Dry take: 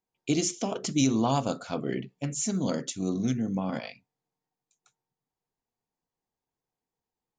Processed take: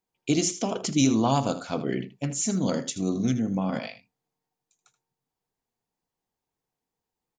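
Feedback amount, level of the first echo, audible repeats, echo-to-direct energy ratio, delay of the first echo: repeats not evenly spaced, −13.5 dB, 1, −13.5 dB, 79 ms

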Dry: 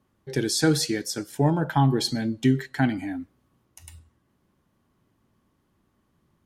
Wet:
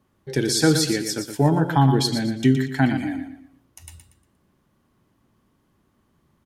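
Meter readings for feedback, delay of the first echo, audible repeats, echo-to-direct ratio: 33%, 118 ms, 3, −8.0 dB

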